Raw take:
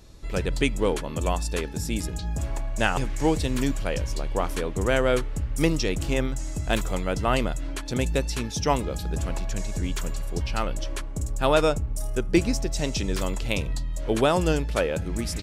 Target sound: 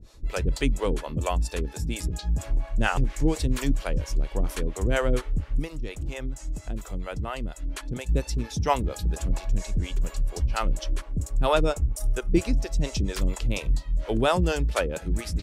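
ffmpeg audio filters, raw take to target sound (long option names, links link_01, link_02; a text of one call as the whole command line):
ffmpeg -i in.wav -filter_complex "[0:a]lowshelf=frequency=72:gain=7.5,asettb=1/sr,asplit=3[link_01][link_02][link_03];[link_01]atrim=end=5.594[link_04];[link_02]atrim=start=5.59:end=8.09,asetpts=PTS-STARTPTS,afade=type=in:duration=0.004:curve=qsin,afade=type=out:start_time=2.496:duration=0.004:curve=qsin,acompressor=threshold=-26dB:ratio=6[link_05];[link_03]atrim=start=8.086[link_06];[link_04][link_05]acrossfade=duration=0.004:curve1=hsin:curve2=qsin[link_07];[link_07][link_06]acrossfade=duration=0.004:curve1=qsin:curve2=hsin,acrossover=split=420[link_08][link_09];[link_08]aeval=exprs='val(0)*(1-1/2+1/2*cos(2*PI*4.3*n/s))':channel_layout=same[link_10];[link_09]aeval=exprs='val(0)*(1-1/2-1/2*cos(2*PI*4.3*n/s))':channel_layout=same[link_11];[link_10][link_11]amix=inputs=2:normalize=0,volume=2dB" out.wav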